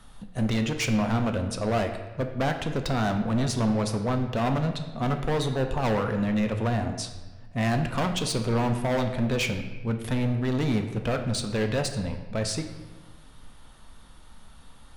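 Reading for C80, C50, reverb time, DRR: 10.0 dB, 8.5 dB, 1.3 s, 5.0 dB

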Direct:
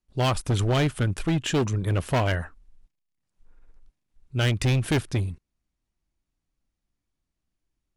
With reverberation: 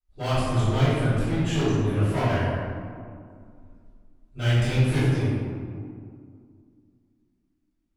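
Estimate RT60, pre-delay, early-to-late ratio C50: 2.2 s, 3 ms, −3.5 dB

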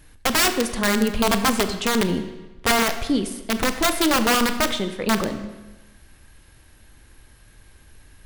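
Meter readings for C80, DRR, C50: 11.5 dB, 8.5 dB, 10.5 dB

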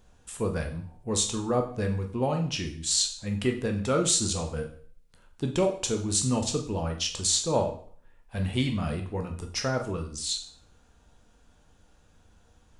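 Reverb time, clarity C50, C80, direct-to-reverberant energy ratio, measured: 0.50 s, 9.5 dB, 13.0 dB, 3.0 dB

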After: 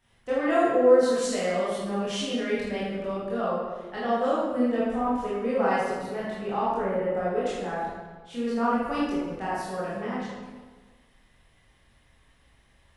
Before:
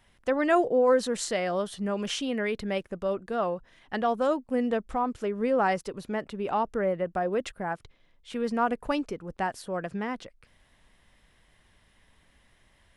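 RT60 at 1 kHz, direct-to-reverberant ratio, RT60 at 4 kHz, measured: 1.4 s, −9.5 dB, 0.95 s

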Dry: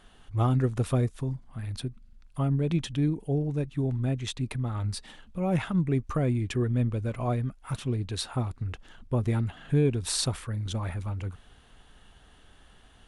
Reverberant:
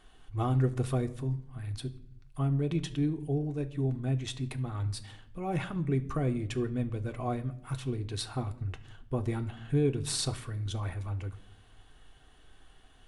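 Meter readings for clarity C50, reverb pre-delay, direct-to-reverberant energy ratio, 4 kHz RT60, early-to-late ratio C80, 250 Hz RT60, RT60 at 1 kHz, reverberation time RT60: 16.5 dB, 3 ms, 5.5 dB, 0.50 s, 19.5 dB, 0.90 s, 0.60 s, 0.70 s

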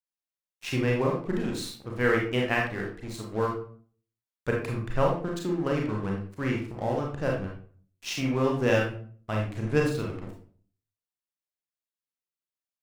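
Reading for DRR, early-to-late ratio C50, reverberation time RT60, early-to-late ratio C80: −1.5 dB, 4.0 dB, 0.45 s, 9.0 dB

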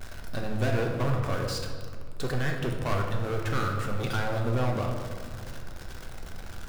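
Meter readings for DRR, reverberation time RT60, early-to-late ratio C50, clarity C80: 1.0 dB, 1.9 s, 4.0 dB, 5.5 dB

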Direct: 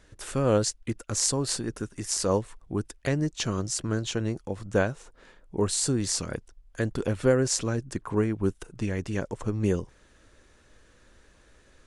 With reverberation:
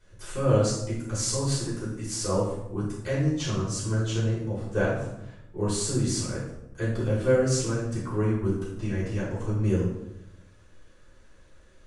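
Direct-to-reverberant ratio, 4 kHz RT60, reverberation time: −9.0 dB, 0.60 s, 0.85 s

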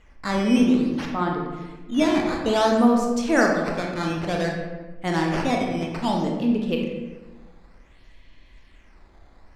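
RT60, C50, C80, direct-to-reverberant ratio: 1.3 s, 2.5 dB, 5.0 dB, 0.0 dB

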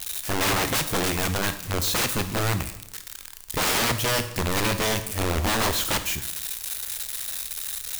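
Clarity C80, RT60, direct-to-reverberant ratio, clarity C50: 14.0 dB, 0.80 s, 9.0 dB, 11.5 dB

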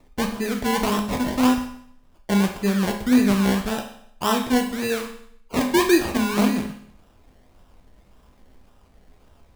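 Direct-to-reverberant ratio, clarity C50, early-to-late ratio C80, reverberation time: 3.0 dB, 8.0 dB, 11.5 dB, 0.65 s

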